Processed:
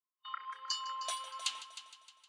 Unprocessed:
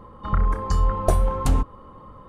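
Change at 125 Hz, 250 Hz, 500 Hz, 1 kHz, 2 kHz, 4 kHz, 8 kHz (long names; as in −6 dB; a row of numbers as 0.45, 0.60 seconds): below −40 dB, below −40 dB, −29.0 dB, −13.0 dB, −7.5 dB, +6.0 dB, −3.0 dB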